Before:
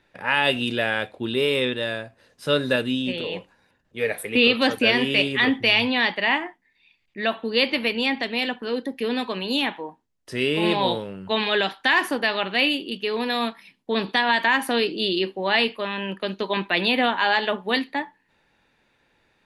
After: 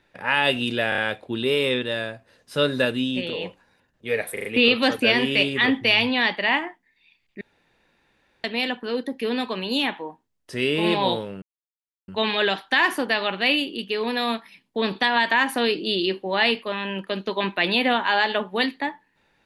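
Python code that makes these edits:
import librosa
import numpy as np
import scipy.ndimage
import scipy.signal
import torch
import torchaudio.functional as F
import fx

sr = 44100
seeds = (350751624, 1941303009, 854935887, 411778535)

y = fx.edit(x, sr, fx.stutter(start_s=0.89, slice_s=0.03, count=4),
    fx.stutter(start_s=4.24, slice_s=0.04, count=4),
    fx.room_tone_fill(start_s=7.2, length_s=1.03),
    fx.insert_silence(at_s=11.21, length_s=0.66), tone=tone)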